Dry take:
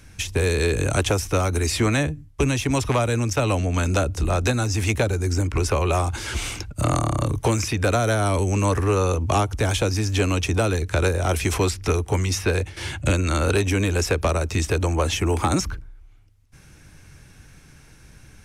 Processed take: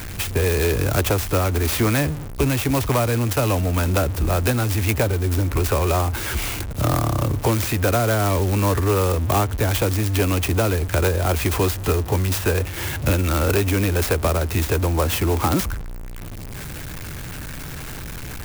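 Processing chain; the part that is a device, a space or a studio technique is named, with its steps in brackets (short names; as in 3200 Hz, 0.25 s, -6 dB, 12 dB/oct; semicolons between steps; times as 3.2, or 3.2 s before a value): early CD player with a faulty converter (zero-crossing step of -27 dBFS; clock jitter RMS 0.051 ms); 11.49–12.52 notch 2200 Hz, Q 14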